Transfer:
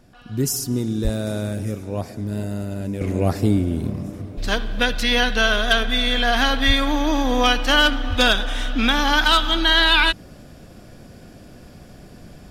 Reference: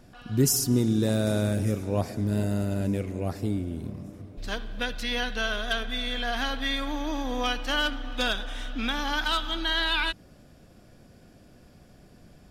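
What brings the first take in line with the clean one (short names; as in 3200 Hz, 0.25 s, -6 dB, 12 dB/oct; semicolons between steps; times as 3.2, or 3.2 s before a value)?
1.03–1.15 HPF 140 Hz 24 dB/oct; 3.01 gain correction -10.5 dB; 6.66–6.78 HPF 140 Hz 24 dB/oct; 8.09–8.21 HPF 140 Hz 24 dB/oct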